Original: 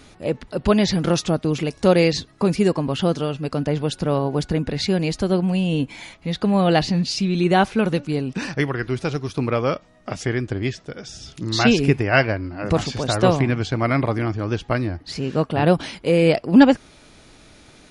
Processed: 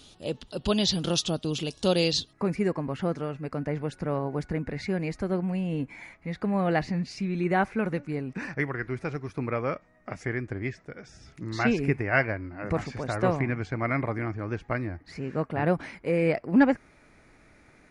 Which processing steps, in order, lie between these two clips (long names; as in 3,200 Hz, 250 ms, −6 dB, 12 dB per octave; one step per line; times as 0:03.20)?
high shelf with overshoot 2,600 Hz +6 dB, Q 3, from 0:02.33 −6.5 dB
level −8.5 dB